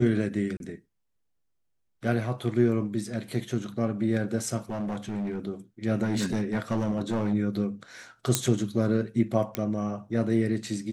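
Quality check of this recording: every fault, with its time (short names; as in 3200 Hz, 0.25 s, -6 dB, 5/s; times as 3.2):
0.57–0.6 gap 31 ms
4.7–5.47 clipped -27.5 dBFS
6.02–7.33 clipped -22 dBFS
8.35 pop -5 dBFS
9.55 pop -13 dBFS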